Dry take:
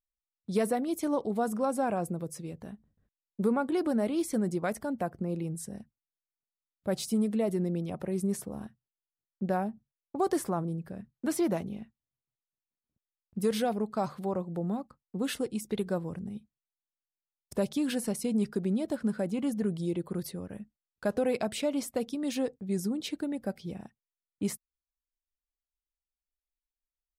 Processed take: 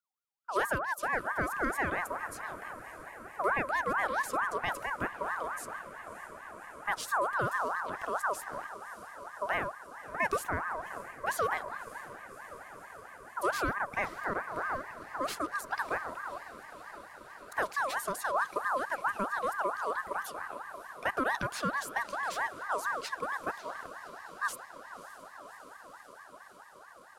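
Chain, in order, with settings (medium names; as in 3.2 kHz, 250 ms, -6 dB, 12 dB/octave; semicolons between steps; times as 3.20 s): echo that smears into a reverb 587 ms, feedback 80%, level -15 dB; ring modulator with a swept carrier 1.1 kHz, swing 30%, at 4.5 Hz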